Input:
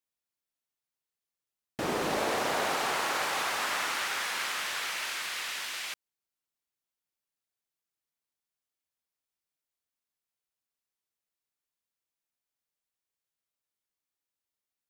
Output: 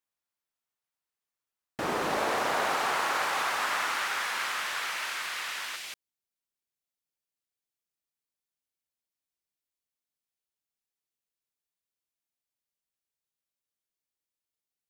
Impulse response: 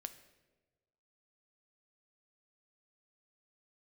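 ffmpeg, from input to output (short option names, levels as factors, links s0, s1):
-af "asetnsamples=n=441:p=0,asendcmd='5.76 equalizer g -3.5',equalizer=f=1200:t=o:w=1.8:g=5.5,volume=0.794"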